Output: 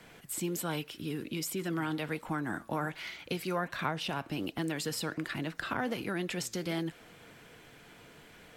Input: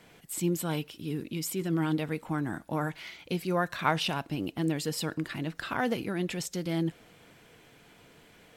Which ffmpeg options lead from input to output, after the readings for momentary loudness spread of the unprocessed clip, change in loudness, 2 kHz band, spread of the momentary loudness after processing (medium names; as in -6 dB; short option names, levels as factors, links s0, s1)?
7 LU, -3.5 dB, -1.0 dB, 20 LU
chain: -filter_complex "[0:a]equalizer=f=1500:t=o:w=0.77:g=3,acrossover=split=260|720[s0][s1][s2];[s0]acompressor=threshold=0.00794:ratio=4[s3];[s1]acompressor=threshold=0.0126:ratio=4[s4];[s2]acompressor=threshold=0.0158:ratio=4[s5];[s3][s4][s5]amix=inputs=3:normalize=0,flanger=delay=0.2:depth=8.8:regen=90:speed=1.3:shape=sinusoidal,volume=2"